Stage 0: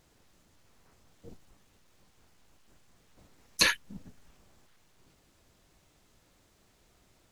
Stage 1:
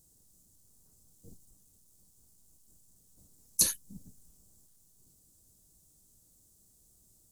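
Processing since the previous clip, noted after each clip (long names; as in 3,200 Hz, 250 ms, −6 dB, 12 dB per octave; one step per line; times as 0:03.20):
drawn EQ curve 180 Hz 0 dB, 2,300 Hz −21 dB, 8,400 Hz +13 dB
level −2.5 dB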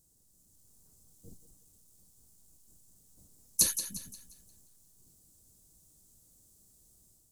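automatic gain control gain up to 5 dB
feedback echo with a high-pass in the loop 176 ms, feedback 41%, high-pass 370 Hz, level −10 dB
level −4 dB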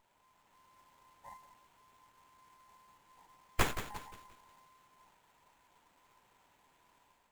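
frequency inversion band by band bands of 1,000 Hz
windowed peak hold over 9 samples
level −2 dB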